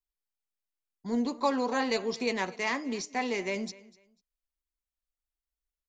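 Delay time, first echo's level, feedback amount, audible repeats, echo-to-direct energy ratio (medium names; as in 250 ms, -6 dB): 247 ms, -21.0 dB, 24%, 2, -21.0 dB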